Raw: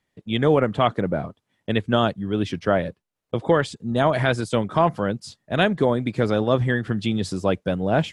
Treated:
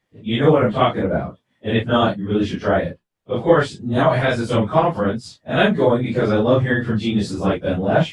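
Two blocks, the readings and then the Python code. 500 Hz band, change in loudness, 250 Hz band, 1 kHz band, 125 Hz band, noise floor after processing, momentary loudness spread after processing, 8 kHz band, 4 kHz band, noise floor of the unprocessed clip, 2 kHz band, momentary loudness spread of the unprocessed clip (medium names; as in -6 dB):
+4.0 dB, +3.5 dB, +4.0 dB, +3.0 dB, +3.5 dB, -72 dBFS, 8 LU, no reading, +2.5 dB, -78 dBFS, +3.5 dB, 8 LU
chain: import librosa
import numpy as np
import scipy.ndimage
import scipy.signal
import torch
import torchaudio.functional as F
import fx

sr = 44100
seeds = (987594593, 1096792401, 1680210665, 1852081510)

y = fx.phase_scramble(x, sr, seeds[0], window_ms=100)
y = fx.high_shelf(y, sr, hz=5400.0, db=-6.0)
y = y * 10.0 ** (4.0 / 20.0)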